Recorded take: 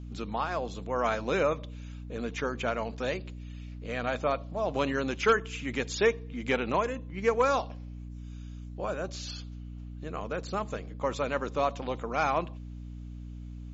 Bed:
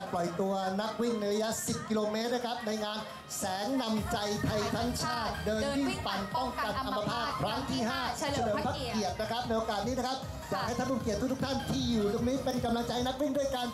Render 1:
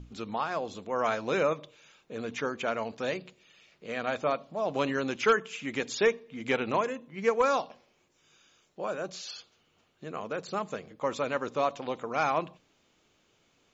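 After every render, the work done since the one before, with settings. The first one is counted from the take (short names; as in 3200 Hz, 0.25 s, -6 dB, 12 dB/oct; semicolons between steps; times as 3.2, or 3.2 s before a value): notches 60/120/180/240/300 Hz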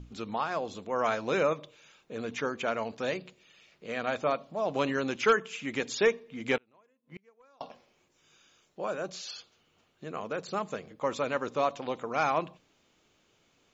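6.57–7.61 flipped gate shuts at -32 dBFS, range -36 dB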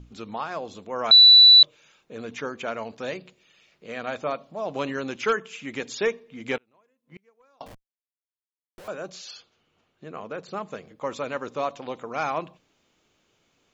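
1.11–1.63 bleep 3960 Hz -8 dBFS; 7.66–8.88 Schmitt trigger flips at -49.5 dBFS; 9.38–10.73 LPF 4000 Hz 6 dB/oct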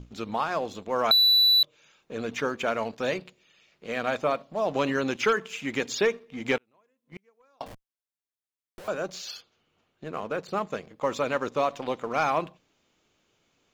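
sample leveller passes 1; compressor 6:1, threshold -19 dBFS, peak gain reduction 8.5 dB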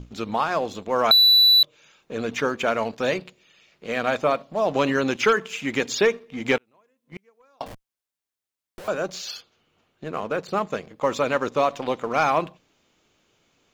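gain +4.5 dB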